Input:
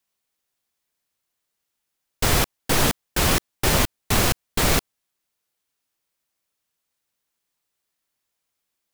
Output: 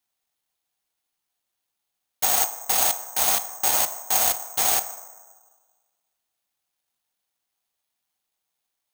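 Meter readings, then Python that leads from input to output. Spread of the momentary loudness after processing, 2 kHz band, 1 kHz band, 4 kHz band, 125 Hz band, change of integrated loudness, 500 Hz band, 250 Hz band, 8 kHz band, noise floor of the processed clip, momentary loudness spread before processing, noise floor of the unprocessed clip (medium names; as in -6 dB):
4 LU, -7.0 dB, -1.0 dB, -4.0 dB, -25.0 dB, +1.0 dB, -7.5 dB, -19.0 dB, +4.0 dB, -82 dBFS, 2 LU, -80 dBFS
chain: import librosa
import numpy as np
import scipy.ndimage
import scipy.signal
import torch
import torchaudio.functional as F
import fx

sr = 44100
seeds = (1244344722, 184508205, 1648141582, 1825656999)

y = fx.highpass_res(x, sr, hz=750.0, q=5.5)
y = fx.peak_eq(y, sr, hz=11000.0, db=7.5, octaves=0.37)
y = fx.rev_fdn(y, sr, rt60_s=1.5, lf_ratio=0.9, hf_ratio=0.4, size_ms=92.0, drr_db=8.5)
y = (np.kron(y[::6], np.eye(6)[0]) * 6)[:len(y)]
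y = y * 10.0 ** (-12.0 / 20.0)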